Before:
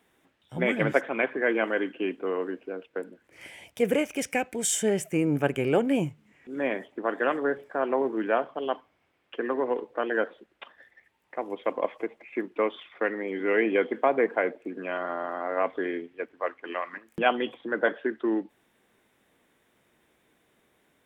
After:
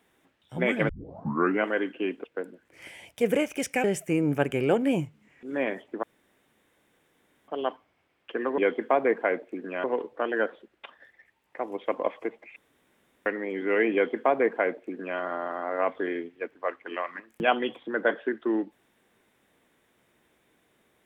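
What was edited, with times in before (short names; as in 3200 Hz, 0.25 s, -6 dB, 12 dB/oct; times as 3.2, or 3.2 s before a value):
0.89 tape start 0.75 s
2.24–2.83 cut
4.43–4.88 cut
7.07–8.52 room tone
12.34–13.04 room tone
13.71–14.97 copy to 9.62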